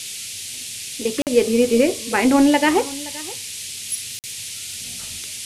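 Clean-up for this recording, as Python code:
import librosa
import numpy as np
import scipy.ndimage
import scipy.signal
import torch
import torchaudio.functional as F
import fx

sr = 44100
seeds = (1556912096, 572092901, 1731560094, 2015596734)

y = fx.fix_interpolate(x, sr, at_s=(1.22, 4.19), length_ms=48.0)
y = fx.noise_reduce(y, sr, print_start_s=4.23, print_end_s=4.73, reduce_db=30.0)
y = fx.fix_echo_inverse(y, sr, delay_ms=522, level_db=-19.5)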